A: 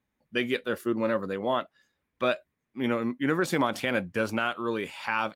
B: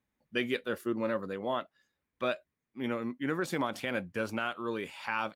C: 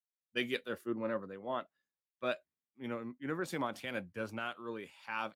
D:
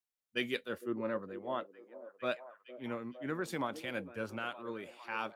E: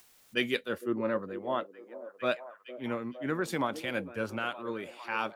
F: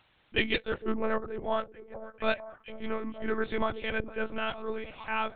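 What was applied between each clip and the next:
gain riding 2 s; trim -5.5 dB
three bands expanded up and down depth 100%; trim -5 dB
repeats whose band climbs or falls 458 ms, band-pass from 390 Hz, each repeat 0.7 oct, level -10 dB
upward compressor, threshold -46 dBFS; trim +5.5 dB
monotone LPC vocoder at 8 kHz 220 Hz; trim +2 dB

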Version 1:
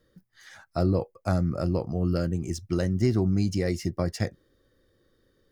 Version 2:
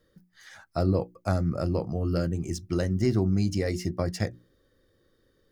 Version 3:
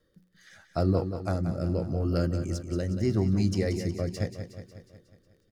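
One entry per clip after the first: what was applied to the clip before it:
hum notches 60/120/180/240/300/360 Hz
rotary cabinet horn 0.8 Hz; crackle 19 per s -54 dBFS; feedback delay 182 ms, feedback 58%, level -9.5 dB

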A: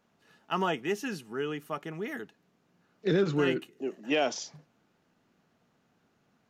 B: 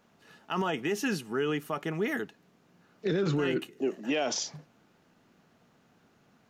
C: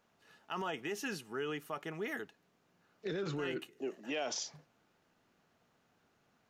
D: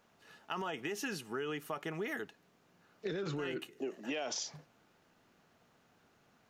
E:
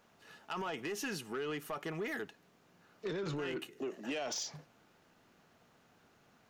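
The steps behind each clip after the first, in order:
peak limiter -26.5 dBFS, peak gain reduction 10 dB; trim +6 dB
peaking EQ 200 Hz -6 dB 1.7 oct; trim -6.5 dB
compression, threshold -39 dBFS, peak gain reduction 6.5 dB; trim +4.5 dB
saturation -33.5 dBFS, distortion -16 dB; trim +2 dB

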